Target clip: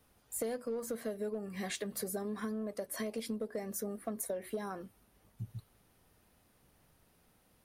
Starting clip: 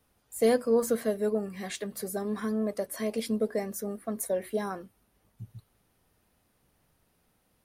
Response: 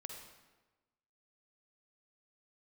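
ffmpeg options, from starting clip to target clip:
-filter_complex "[0:a]asplit=2[a][b];[b]asoftclip=type=hard:threshold=-23.5dB,volume=-3.5dB[c];[a][c]amix=inputs=2:normalize=0,acompressor=threshold=-32dB:ratio=12,volume=-2.5dB"

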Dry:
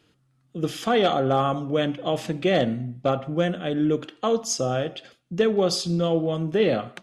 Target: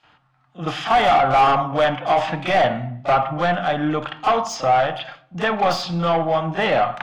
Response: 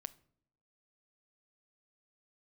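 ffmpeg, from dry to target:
-filter_complex "[0:a]lowpass=5.9k,lowshelf=f=580:t=q:w=3:g=-11,asoftclip=type=tanh:threshold=-25.5dB,asplit=2[a][b];[1:a]atrim=start_sample=2205,lowpass=2.4k,adelay=33[c];[b][c]afir=irnorm=-1:irlink=0,volume=17.5dB[d];[a][d]amix=inputs=2:normalize=0"

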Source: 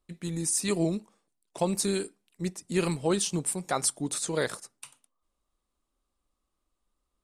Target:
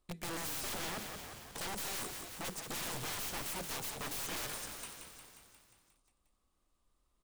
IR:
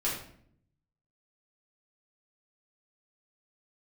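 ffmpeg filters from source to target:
-filter_complex "[0:a]acontrast=56,alimiter=limit=-13dB:level=0:latency=1:release=246,aeval=exprs='(mod(23.7*val(0)+1,2)-1)/23.7':c=same,asplit=9[a][b][c][d][e][f][g][h][i];[b]adelay=178,afreqshift=-35,volume=-8dB[j];[c]adelay=356,afreqshift=-70,volume=-12dB[k];[d]adelay=534,afreqshift=-105,volume=-16dB[l];[e]adelay=712,afreqshift=-140,volume=-20dB[m];[f]adelay=890,afreqshift=-175,volume=-24.1dB[n];[g]adelay=1068,afreqshift=-210,volume=-28.1dB[o];[h]adelay=1246,afreqshift=-245,volume=-32.1dB[p];[i]adelay=1424,afreqshift=-280,volume=-36.1dB[q];[a][j][k][l][m][n][o][p][q]amix=inputs=9:normalize=0,aeval=exprs='(tanh(39.8*val(0)+0.35)-tanh(0.35))/39.8':c=same,bandreject=f=80.69:t=h:w=4,bandreject=f=161.38:t=h:w=4,bandreject=f=242.07:t=h:w=4,bandreject=f=322.76:t=h:w=4,bandreject=f=403.45:t=h:w=4,bandreject=f=484.14:t=h:w=4,volume=-4dB"

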